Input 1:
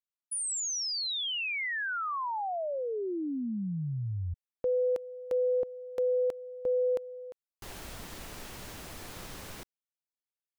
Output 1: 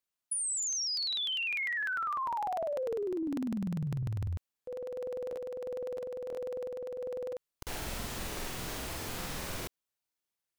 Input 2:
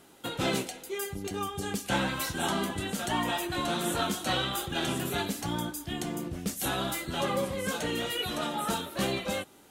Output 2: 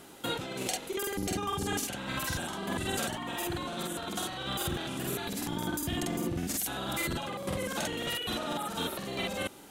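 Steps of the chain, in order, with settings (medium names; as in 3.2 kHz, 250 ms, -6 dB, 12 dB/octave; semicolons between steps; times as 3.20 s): compressor with a negative ratio -36 dBFS, ratio -1; crackling interface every 0.10 s, samples 2048, repeat, from 0.48 s; trim +1.5 dB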